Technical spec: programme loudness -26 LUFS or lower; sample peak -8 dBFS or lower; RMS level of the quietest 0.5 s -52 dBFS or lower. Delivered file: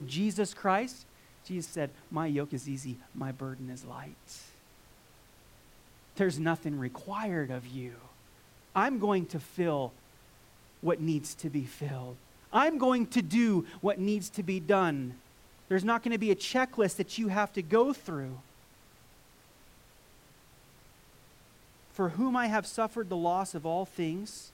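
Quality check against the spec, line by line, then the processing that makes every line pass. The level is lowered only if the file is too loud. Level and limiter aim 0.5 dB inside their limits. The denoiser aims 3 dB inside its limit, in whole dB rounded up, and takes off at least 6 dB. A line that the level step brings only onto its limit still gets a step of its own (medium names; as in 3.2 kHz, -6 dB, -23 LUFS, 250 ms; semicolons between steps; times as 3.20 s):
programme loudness -31.5 LUFS: pass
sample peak -13.5 dBFS: pass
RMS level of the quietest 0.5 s -59 dBFS: pass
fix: none needed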